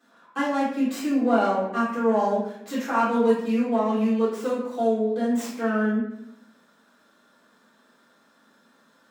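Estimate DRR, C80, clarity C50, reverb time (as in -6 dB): -12.5 dB, 5.5 dB, 2.0 dB, 0.80 s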